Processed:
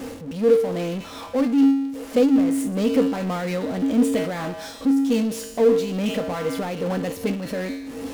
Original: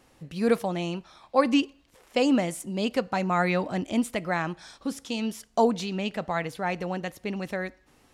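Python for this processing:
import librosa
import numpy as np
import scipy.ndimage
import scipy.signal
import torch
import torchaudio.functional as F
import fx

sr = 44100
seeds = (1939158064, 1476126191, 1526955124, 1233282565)

y = fx.comb_fb(x, sr, f0_hz=91.0, decay_s=0.57, harmonics='odd', damping=0.0, mix_pct=80)
y = fx.power_curve(y, sr, exponent=0.35)
y = fx.small_body(y, sr, hz=(260.0, 470.0), ring_ms=45, db=15)
y = fx.am_noise(y, sr, seeds[0], hz=5.7, depth_pct=65)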